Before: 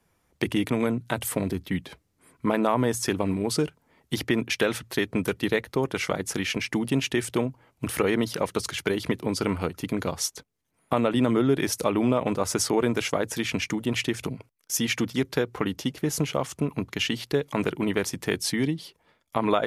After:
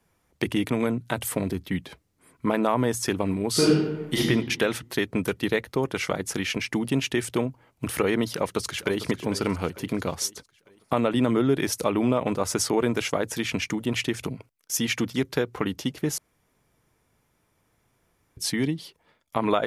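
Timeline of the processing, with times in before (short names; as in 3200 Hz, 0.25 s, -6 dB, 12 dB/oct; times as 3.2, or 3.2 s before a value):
3.51–4.18 reverb throw, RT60 1.1 s, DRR -8 dB
8.29–9.02 echo throw 0.45 s, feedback 50%, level -13 dB
16.18–18.37 room tone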